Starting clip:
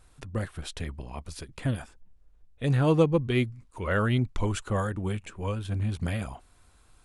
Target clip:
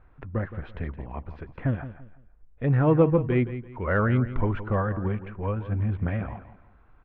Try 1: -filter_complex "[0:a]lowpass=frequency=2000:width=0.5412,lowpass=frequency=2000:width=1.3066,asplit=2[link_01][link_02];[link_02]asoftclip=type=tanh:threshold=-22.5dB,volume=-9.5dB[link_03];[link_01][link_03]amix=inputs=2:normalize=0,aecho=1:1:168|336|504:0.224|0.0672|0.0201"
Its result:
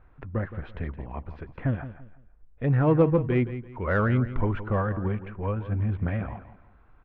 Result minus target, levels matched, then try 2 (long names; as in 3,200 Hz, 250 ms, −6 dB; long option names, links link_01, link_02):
soft clipping: distortion +11 dB
-filter_complex "[0:a]lowpass=frequency=2000:width=0.5412,lowpass=frequency=2000:width=1.3066,asplit=2[link_01][link_02];[link_02]asoftclip=type=tanh:threshold=-13dB,volume=-9.5dB[link_03];[link_01][link_03]amix=inputs=2:normalize=0,aecho=1:1:168|336|504:0.224|0.0672|0.0201"